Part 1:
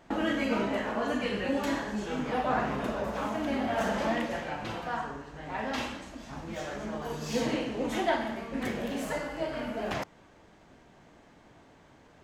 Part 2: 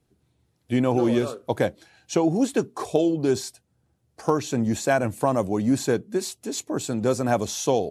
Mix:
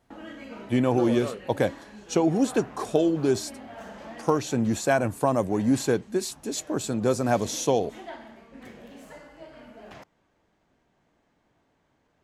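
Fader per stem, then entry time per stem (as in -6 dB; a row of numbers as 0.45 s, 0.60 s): -12.5 dB, -1.0 dB; 0.00 s, 0.00 s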